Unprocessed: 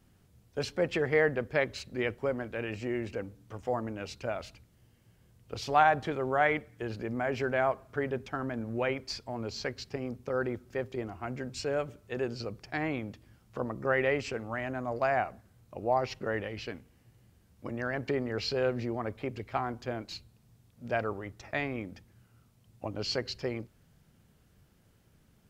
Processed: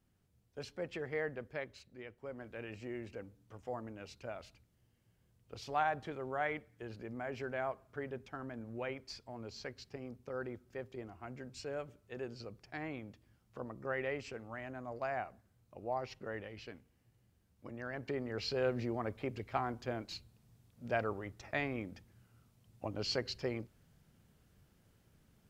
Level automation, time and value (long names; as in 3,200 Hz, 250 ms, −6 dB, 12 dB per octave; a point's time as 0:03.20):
0:01.46 −12 dB
0:02.11 −19 dB
0:02.48 −10 dB
0:17.78 −10 dB
0:18.77 −3.5 dB